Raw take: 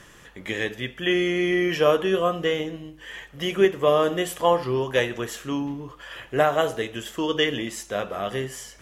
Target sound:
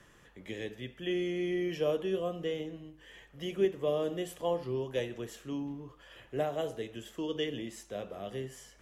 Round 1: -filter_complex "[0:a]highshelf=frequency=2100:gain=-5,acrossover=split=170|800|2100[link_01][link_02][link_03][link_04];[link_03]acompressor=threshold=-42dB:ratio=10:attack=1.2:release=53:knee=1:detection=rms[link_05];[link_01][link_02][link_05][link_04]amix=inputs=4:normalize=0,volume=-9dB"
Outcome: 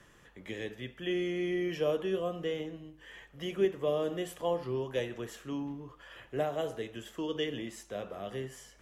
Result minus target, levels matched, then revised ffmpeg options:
downward compressor: peak gain reduction −9.5 dB
-filter_complex "[0:a]highshelf=frequency=2100:gain=-5,acrossover=split=170|800|2100[link_01][link_02][link_03][link_04];[link_03]acompressor=threshold=-52.5dB:ratio=10:attack=1.2:release=53:knee=1:detection=rms[link_05];[link_01][link_02][link_05][link_04]amix=inputs=4:normalize=0,volume=-9dB"

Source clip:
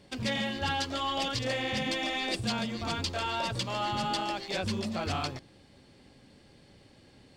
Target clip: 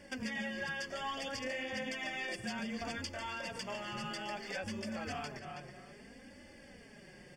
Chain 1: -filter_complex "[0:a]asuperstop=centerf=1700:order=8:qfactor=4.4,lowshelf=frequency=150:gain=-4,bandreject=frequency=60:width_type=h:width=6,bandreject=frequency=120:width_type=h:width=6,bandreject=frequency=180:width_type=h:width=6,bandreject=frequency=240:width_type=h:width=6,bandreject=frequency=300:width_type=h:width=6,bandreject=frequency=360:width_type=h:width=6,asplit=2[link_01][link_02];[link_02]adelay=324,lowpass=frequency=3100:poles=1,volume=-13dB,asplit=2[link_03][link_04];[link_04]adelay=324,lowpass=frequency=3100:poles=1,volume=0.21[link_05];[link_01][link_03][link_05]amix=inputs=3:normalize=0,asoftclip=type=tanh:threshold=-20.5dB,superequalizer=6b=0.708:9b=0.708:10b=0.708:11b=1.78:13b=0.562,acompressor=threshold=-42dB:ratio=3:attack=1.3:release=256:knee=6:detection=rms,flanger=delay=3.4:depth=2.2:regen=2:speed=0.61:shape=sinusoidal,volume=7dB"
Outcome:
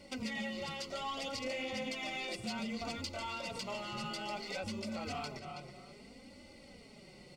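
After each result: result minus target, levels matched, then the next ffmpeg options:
soft clipping: distortion +15 dB; 2,000 Hz band −3.5 dB
-filter_complex "[0:a]asuperstop=centerf=1700:order=8:qfactor=4.4,lowshelf=frequency=150:gain=-4,bandreject=frequency=60:width_type=h:width=6,bandreject=frequency=120:width_type=h:width=6,bandreject=frequency=180:width_type=h:width=6,bandreject=frequency=240:width_type=h:width=6,bandreject=frequency=300:width_type=h:width=6,bandreject=frequency=360:width_type=h:width=6,asplit=2[link_01][link_02];[link_02]adelay=324,lowpass=frequency=3100:poles=1,volume=-13dB,asplit=2[link_03][link_04];[link_04]adelay=324,lowpass=frequency=3100:poles=1,volume=0.21[link_05];[link_01][link_03][link_05]amix=inputs=3:normalize=0,asoftclip=type=tanh:threshold=-12.5dB,superequalizer=6b=0.708:9b=0.708:10b=0.708:11b=1.78:13b=0.562,acompressor=threshold=-42dB:ratio=3:attack=1.3:release=256:knee=6:detection=rms,flanger=delay=3.4:depth=2.2:regen=2:speed=0.61:shape=sinusoidal,volume=7dB"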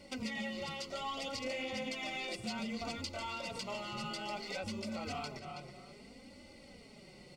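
2,000 Hz band −3.5 dB
-filter_complex "[0:a]asuperstop=centerf=4000:order=8:qfactor=4.4,lowshelf=frequency=150:gain=-4,bandreject=frequency=60:width_type=h:width=6,bandreject=frequency=120:width_type=h:width=6,bandreject=frequency=180:width_type=h:width=6,bandreject=frequency=240:width_type=h:width=6,bandreject=frequency=300:width_type=h:width=6,bandreject=frequency=360:width_type=h:width=6,asplit=2[link_01][link_02];[link_02]adelay=324,lowpass=frequency=3100:poles=1,volume=-13dB,asplit=2[link_03][link_04];[link_04]adelay=324,lowpass=frequency=3100:poles=1,volume=0.21[link_05];[link_01][link_03][link_05]amix=inputs=3:normalize=0,asoftclip=type=tanh:threshold=-12.5dB,superequalizer=6b=0.708:9b=0.708:10b=0.708:11b=1.78:13b=0.562,acompressor=threshold=-42dB:ratio=3:attack=1.3:release=256:knee=6:detection=rms,flanger=delay=3.4:depth=2.2:regen=2:speed=0.61:shape=sinusoidal,volume=7dB"

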